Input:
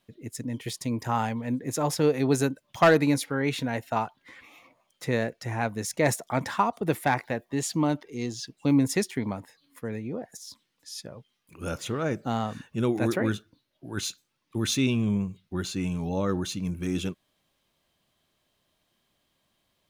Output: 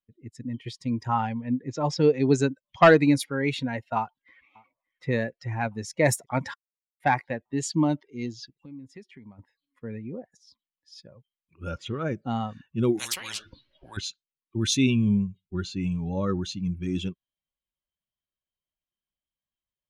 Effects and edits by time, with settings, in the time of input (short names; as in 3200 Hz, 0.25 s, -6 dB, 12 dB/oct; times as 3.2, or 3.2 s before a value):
1.14–3.18 LPF 5200 Hz -> 9600 Hz 24 dB/oct
3.97–5.09 echo throw 0.58 s, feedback 60%, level -17.5 dB
6.54–7 mute
8.45–9.39 compressor 3:1, threshold -41 dBFS
12.99–13.97 spectral compressor 10:1
whole clip: per-bin expansion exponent 1.5; low-pass opened by the level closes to 2700 Hz, open at -23 dBFS; gain +4.5 dB